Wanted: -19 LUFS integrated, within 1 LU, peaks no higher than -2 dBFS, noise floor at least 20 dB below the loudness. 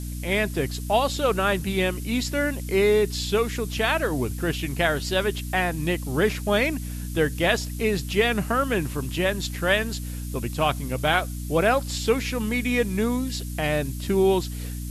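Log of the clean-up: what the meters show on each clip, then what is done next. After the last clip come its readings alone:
hum 60 Hz; highest harmonic 300 Hz; hum level -30 dBFS; noise floor -32 dBFS; noise floor target -45 dBFS; loudness -24.5 LUFS; peak level -7.0 dBFS; loudness target -19.0 LUFS
-> de-hum 60 Hz, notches 5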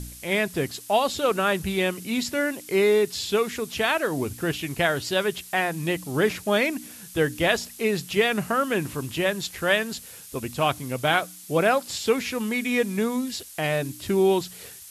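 hum not found; noise floor -44 dBFS; noise floor target -45 dBFS
-> noise print and reduce 6 dB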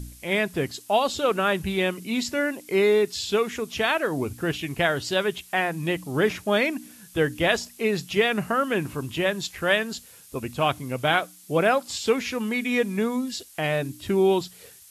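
noise floor -50 dBFS; loudness -25.0 LUFS; peak level -7.0 dBFS; loudness target -19.0 LUFS
-> trim +6 dB; peak limiter -2 dBFS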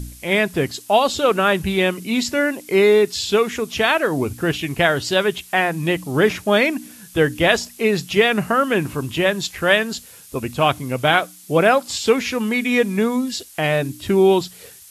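loudness -19.0 LUFS; peak level -2.0 dBFS; noise floor -44 dBFS

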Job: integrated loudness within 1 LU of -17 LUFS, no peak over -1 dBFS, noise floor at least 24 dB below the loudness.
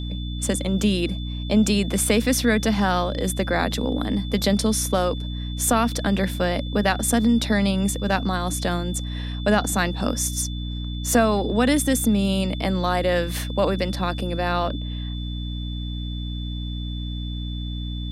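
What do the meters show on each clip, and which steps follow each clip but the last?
hum 60 Hz; highest harmonic 300 Hz; hum level -27 dBFS; steady tone 3.5 kHz; tone level -38 dBFS; loudness -23.0 LUFS; peak level -5.5 dBFS; loudness target -17.0 LUFS
-> hum notches 60/120/180/240/300 Hz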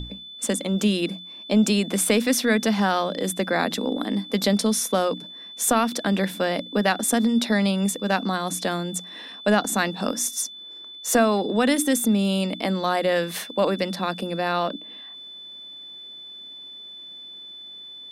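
hum not found; steady tone 3.5 kHz; tone level -38 dBFS
-> band-stop 3.5 kHz, Q 30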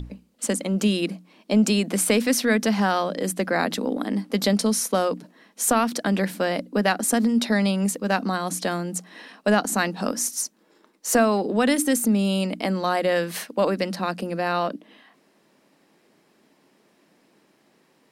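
steady tone not found; loudness -23.5 LUFS; peak level -6.0 dBFS; loudness target -17.0 LUFS
-> trim +6.5 dB; peak limiter -1 dBFS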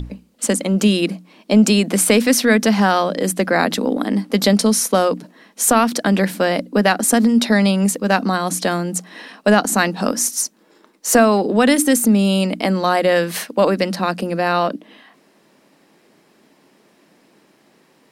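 loudness -17.0 LUFS; peak level -1.0 dBFS; noise floor -56 dBFS

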